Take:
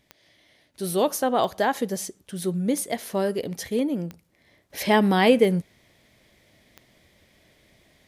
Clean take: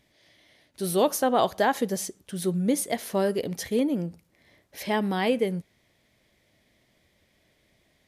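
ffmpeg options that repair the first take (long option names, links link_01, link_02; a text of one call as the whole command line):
ffmpeg -i in.wav -af "adeclick=threshold=4,asetnsamples=nb_out_samples=441:pad=0,asendcmd='4.7 volume volume -7dB',volume=0dB" out.wav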